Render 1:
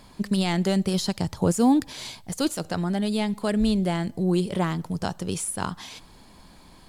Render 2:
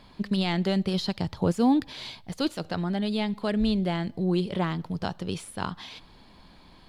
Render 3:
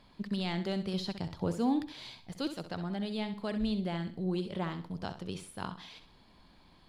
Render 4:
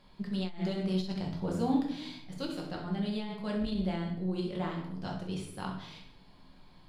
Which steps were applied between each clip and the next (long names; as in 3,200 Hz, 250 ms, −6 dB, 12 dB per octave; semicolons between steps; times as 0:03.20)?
high shelf with overshoot 5,400 Hz −10 dB, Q 1.5; level −2.5 dB
flutter between parallel walls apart 11.1 metres, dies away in 0.37 s; level −8 dB
rectangular room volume 150 cubic metres, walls mixed, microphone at 1 metre; saturating transformer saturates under 150 Hz; level −2.5 dB